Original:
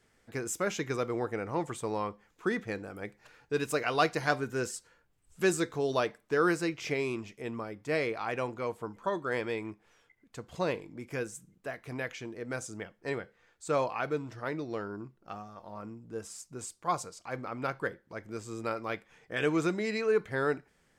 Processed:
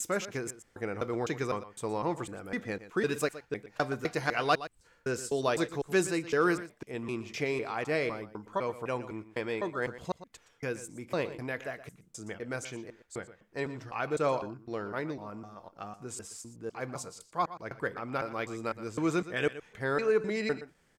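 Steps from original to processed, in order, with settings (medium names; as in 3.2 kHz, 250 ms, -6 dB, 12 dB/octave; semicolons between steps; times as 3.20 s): slices played last to first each 253 ms, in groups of 3; delay 119 ms -14.5 dB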